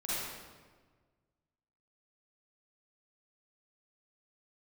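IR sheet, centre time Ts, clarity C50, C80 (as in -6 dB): 0.129 s, -7.5 dB, -2.0 dB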